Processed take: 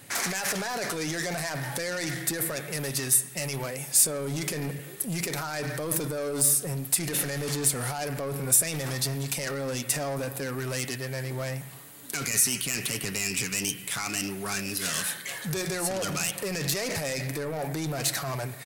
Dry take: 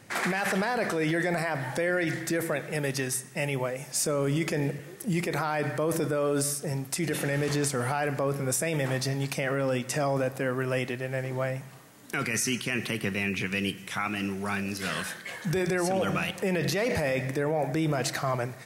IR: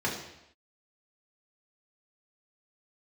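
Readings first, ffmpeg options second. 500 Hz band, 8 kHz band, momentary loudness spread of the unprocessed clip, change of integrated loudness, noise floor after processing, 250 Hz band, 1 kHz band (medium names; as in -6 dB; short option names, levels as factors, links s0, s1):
-4.5 dB, +8.5 dB, 5 LU, +1.0 dB, -42 dBFS, -4.5 dB, -4.0 dB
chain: -af "highshelf=f=4400:t=q:w=3:g=-9.5,aecho=1:1:7.1:0.35,alimiter=limit=0.119:level=0:latency=1:release=16,asoftclip=type=tanh:threshold=0.0447,aexciter=amount=12.1:drive=2.6:freq=4800"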